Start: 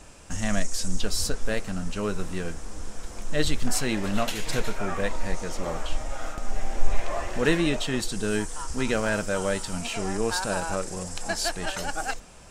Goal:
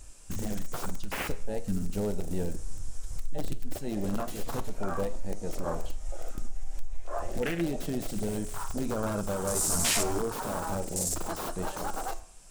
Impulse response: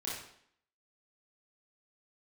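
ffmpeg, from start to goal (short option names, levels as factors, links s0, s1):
-filter_complex "[0:a]asettb=1/sr,asplit=3[s0][s1][s2];[s0]atrim=end=1.684[s3];[s1]atrim=start=1.68:end=2.57,asetpts=PTS-STARTPTS,afade=t=in:d=0.004:c=qsin,afade=t=out:st=0.886:d=0.004:c=qsin,aeval=exprs='val(0)+0.5*0.0211*sgn(val(0))':c=same[s4];[s2]atrim=start=2.566[s5];[s3][s4]acrossfade=d=0.004:c1=hsin:c2=qsin[s6];[s6][s5]acrossfade=d=0.004:c1=qsin:c2=hsin,asettb=1/sr,asplit=3[s7][s8][s9];[s7]atrim=end=3.104[s10];[s8]atrim=start=3.1:end=3.79,asetpts=PTS-STARTPTS,afade=t=in:d=0.004:c=qsin,afade=t=out:st=0.686:d=0.004:c=qsin,lowshelf=f=68:g=8[s11];[s9]atrim=start=3.786[s12];[s10][s11]acrossfade=d=0.004:c1=hsin:c2=qsin[s13];[s13][s12]acrossfade=d=0.004:c1=qsin:c2=hsin,acompressor=threshold=0.0501:ratio=6,equalizer=f=10000:t=o:w=1.9:g=6,crystalizer=i=1.5:c=0,aeval=exprs='(mod(10.6*val(0)+1,2)-1)/10.6':c=same,bandreject=f=60:t=h:w=6,bandreject=f=120:t=h:w=6,alimiter=limit=0.0708:level=0:latency=1:release=429,asettb=1/sr,asplit=3[s14][s15][s16];[s14]atrim=end=9.544[s17];[s15]atrim=start=9.54:end=10.19,asetpts=PTS-STARTPTS,afade=t=in:d=0.004:c=qsin,afade=t=out:st=0.646:d=0.004:c=qsin,asplit=2[s18][s19];[s19]adelay=13,volume=0.794[s20];[s18][s20]amix=inputs=2:normalize=0,atrim=end_sample=28665[s21];[s16]atrim=start=10.186[s22];[s17][s21]acrossfade=d=0.004:c1=hsin:c2=qsin[s23];[s23][s22]acrossfade=d=0.004:c1=qsin:c2=hsin,afwtdn=0.02,asplit=2[s24][s25];[1:a]atrim=start_sample=2205,adelay=20[s26];[s25][s26]afir=irnorm=-1:irlink=0,volume=0.106[s27];[s24][s27]amix=inputs=2:normalize=0,flanger=delay=9.6:depth=2.6:regen=84:speed=1.1:shape=sinusoidal,volume=2.66"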